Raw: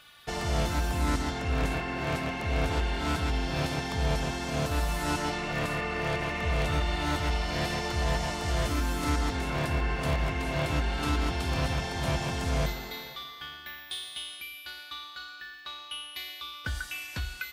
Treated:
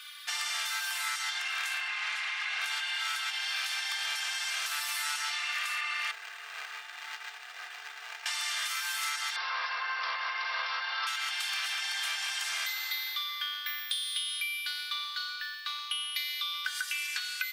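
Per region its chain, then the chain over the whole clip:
1.88–2.61 s: comb filter that takes the minimum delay 4.8 ms + low-pass 9 kHz + treble shelf 5.2 kHz -7.5 dB
6.11–8.26 s: median filter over 41 samples + decimation joined by straight lines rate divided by 4×
9.36–11.07 s: peaking EQ 2.7 kHz -6.5 dB 1.1 oct + small resonant body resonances 550/1000 Hz, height 14 dB, ringing for 20 ms + careless resampling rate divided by 4×, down none, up filtered
whole clip: high-pass 1.4 kHz 24 dB/octave; comb 2.5 ms, depth 55%; compression, threshold -38 dBFS; trim +8 dB

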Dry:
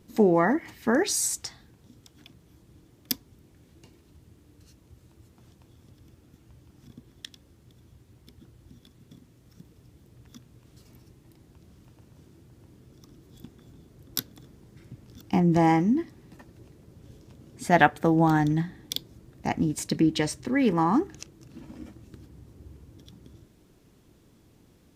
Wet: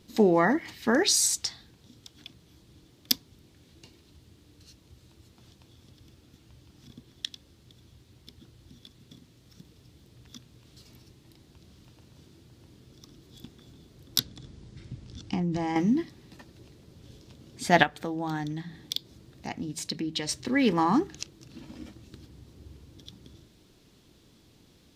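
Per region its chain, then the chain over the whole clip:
14.19–15.76 s: bass shelf 140 Hz +10.5 dB + compression 12:1, threshold -23 dBFS + low-pass 9.2 kHz 24 dB/octave
17.83–20.29 s: high-pass 43 Hz + compression 1.5:1, threshold -44 dBFS
whole clip: peaking EQ 4 kHz +10 dB 1.3 oct; de-hum 54.61 Hz, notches 3; trim -1 dB

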